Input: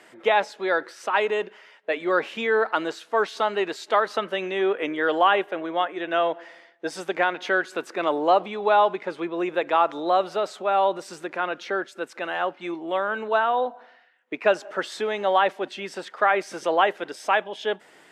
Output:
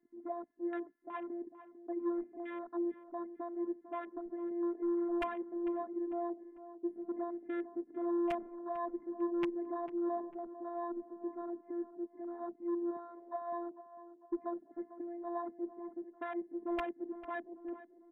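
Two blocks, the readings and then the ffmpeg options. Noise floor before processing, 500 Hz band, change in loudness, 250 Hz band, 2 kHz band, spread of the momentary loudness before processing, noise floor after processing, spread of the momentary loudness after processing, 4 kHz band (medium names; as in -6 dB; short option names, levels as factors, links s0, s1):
-54 dBFS, -16.0 dB, -15.5 dB, -4.0 dB, -26.0 dB, 10 LU, -64 dBFS, 10 LU, under -25 dB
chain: -filter_complex "[0:a]firequalizer=gain_entry='entry(280,0);entry(480,-21);entry(840,-23);entry(1300,-25)':delay=0.05:min_phase=1,asoftclip=type=tanh:threshold=0.0237,highpass=190,acontrast=36,asuperstop=centerf=4800:order=20:qfactor=0.65,aecho=1:1:1.1:0.4,afftfilt=real='hypot(re,im)*cos(PI*b)':imag='0':win_size=512:overlap=0.75,aeval=exprs='(mod(22.4*val(0)+1,2)-1)/22.4':c=same,afwtdn=0.00501,highshelf=f=8100:g=-12,asplit=2[s0][s1];[s1]adelay=448,lowpass=f=1600:p=1,volume=0.224,asplit=2[s2][s3];[s3]adelay=448,lowpass=f=1600:p=1,volume=0.48,asplit=2[s4][s5];[s5]adelay=448,lowpass=f=1600:p=1,volume=0.48,asplit=2[s6][s7];[s7]adelay=448,lowpass=f=1600:p=1,volume=0.48,asplit=2[s8][s9];[s9]adelay=448,lowpass=f=1600:p=1,volume=0.48[s10];[s2][s4][s6][s8][s10]amix=inputs=5:normalize=0[s11];[s0][s11]amix=inputs=2:normalize=0,volume=1.26"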